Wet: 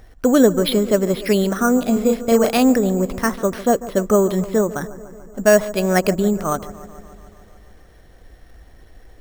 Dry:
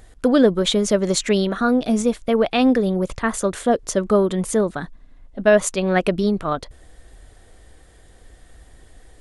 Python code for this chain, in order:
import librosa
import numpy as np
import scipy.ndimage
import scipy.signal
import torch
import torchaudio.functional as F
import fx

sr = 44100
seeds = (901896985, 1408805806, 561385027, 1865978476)

y = fx.doubler(x, sr, ms=35.0, db=-3.5, at=(1.93, 2.58))
y = fx.echo_wet_lowpass(y, sr, ms=145, feedback_pct=69, hz=1400.0, wet_db=-16.0)
y = np.repeat(scipy.signal.resample_poly(y, 1, 6), 6)[:len(y)]
y = y * librosa.db_to_amplitude(1.5)